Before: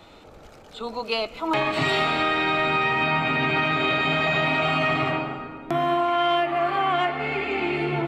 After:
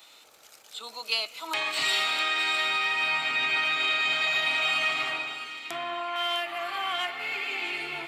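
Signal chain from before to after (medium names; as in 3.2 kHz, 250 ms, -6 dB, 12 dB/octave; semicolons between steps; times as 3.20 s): differentiator; 5.63–6.16 s: low-pass that closes with the level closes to 2.6 kHz, closed at -39 dBFS; feedback echo behind a high-pass 654 ms, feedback 32%, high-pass 2.1 kHz, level -9 dB; trim +8 dB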